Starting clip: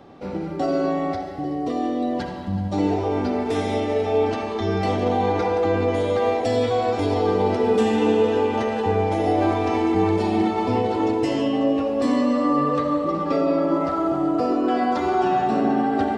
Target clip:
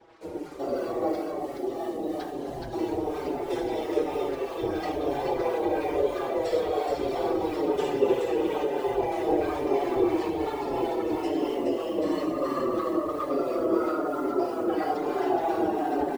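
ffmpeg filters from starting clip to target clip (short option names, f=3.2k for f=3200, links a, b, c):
-filter_complex "[0:a]acrusher=bits=6:mix=0:aa=0.5,acrossover=split=750[a][b];[a]aeval=exprs='val(0)*(1-0.5/2+0.5/2*cos(2*PI*3*n/s))':c=same[c];[b]aeval=exprs='val(0)*(1-0.5/2-0.5/2*cos(2*PI*3*n/s))':c=same[d];[c][d]amix=inputs=2:normalize=0,aecho=1:1:422:0.668,afftfilt=real='hypot(re,im)*cos(2*PI*random(0))':imag='hypot(re,im)*sin(2*PI*random(1))':win_size=512:overlap=0.75,lowshelf=f=270:t=q:w=3:g=-6.5,asplit=2[e][f];[f]adelay=5.6,afreqshift=-1.1[g];[e][g]amix=inputs=2:normalize=1,volume=2dB"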